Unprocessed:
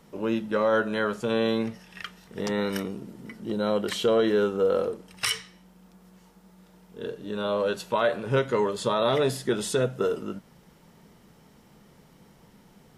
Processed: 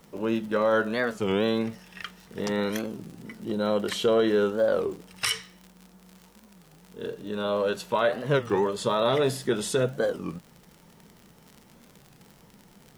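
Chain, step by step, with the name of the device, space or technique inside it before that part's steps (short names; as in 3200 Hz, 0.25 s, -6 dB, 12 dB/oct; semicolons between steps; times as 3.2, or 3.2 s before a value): warped LP (record warp 33 1/3 rpm, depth 250 cents; crackle 60/s -37 dBFS; white noise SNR 41 dB)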